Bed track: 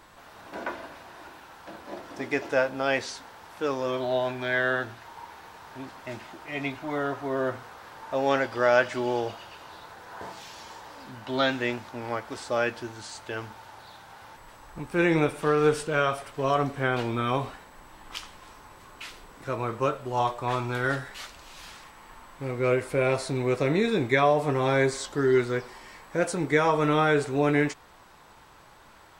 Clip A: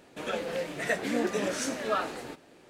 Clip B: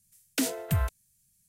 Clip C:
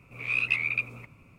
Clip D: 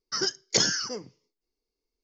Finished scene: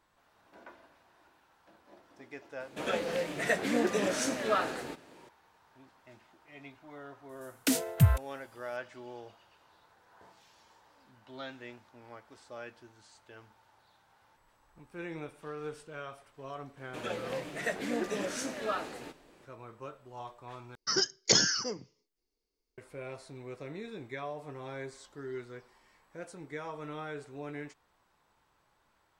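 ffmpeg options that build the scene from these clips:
-filter_complex "[1:a]asplit=2[a][b];[0:a]volume=-18.5dB[c];[a]highpass=44[d];[2:a]equalizer=f=120:t=o:w=0.77:g=8.5[e];[c]asplit=2[f][g];[f]atrim=end=20.754[h];[4:a]atrim=end=2.03,asetpts=PTS-STARTPTS,volume=-1dB[i];[g]atrim=start=22.776[j];[d]atrim=end=2.69,asetpts=PTS-STARTPTS,afade=t=in:d=0.004:c=hsin,afade=t=out:st=2.686:d=0.004:c=hsin,adelay=2600[k];[e]atrim=end=1.48,asetpts=PTS-STARTPTS,volume=-0.5dB,afade=t=in:d=0.004:c=hsin,afade=t=out:st=1.476:d=0.004:c=hsin,adelay=7290[l];[b]atrim=end=2.69,asetpts=PTS-STARTPTS,volume=-4.5dB,afade=t=in:d=0.004:c=hsin,afade=t=out:st=2.686:d=0.004:c=hsin,adelay=16770[m];[h][i]acrossfade=d=0.004:c1=hsin:c2=hsin[n];[n][j]acrossfade=d=0.004:c1=hsin:c2=hsin[o];[o][k][l][m]amix=inputs=4:normalize=0"

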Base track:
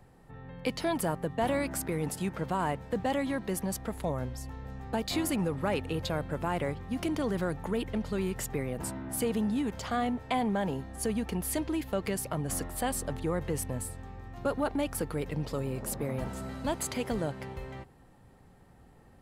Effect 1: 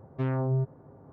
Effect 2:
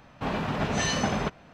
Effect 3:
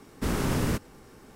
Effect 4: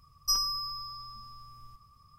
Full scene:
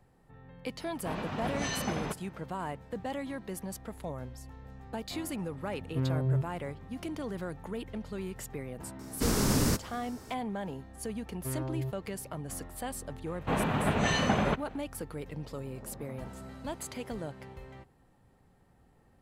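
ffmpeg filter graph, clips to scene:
-filter_complex "[2:a]asplit=2[a][b];[1:a]asplit=2[c][d];[0:a]volume=-6.5dB[e];[c]equalizer=f=180:w=1.5:g=15[f];[3:a]highshelf=f=3.8k:t=q:w=1.5:g=6.5[g];[b]equalizer=f=5.3k:w=2.3:g=-11.5[h];[a]atrim=end=1.53,asetpts=PTS-STARTPTS,volume=-7.5dB,afade=t=in:d=0.004:c=hsin,afade=t=out:st=1.526:d=0.004:c=hsin,adelay=840[i];[f]atrim=end=1.12,asetpts=PTS-STARTPTS,volume=-8.5dB,afade=t=in:d=0.004:c=hsin,afade=t=out:st=1.116:d=0.004:c=hsin,adelay=254457S[j];[g]atrim=end=1.35,asetpts=PTS-STARTPTS,volume=-1dB,afade=t=in:d=0.004:c=hsin,afade=t=out:st=1.346:d=0.004:c=hsin,adelay=8990[k];[d]atrim=end=1.12,asetpts=PTS-STARTPTS,volume=-8dB,afade=t=in:d=0.004:c=hsin,afade=t=out:st=1.116:d=0.004:c=hsin,adelay=11260[l];[h]atrim=end=1.53,asetpts=PTS-STARTPTS,afade=t=in:d=0.004:c=hsin,afade=t=out:st=1.526:d=0.004:c=hsin,adelay=13260[m];[e][i][j][k][l][m]amix=inputs=6:normalize=0"

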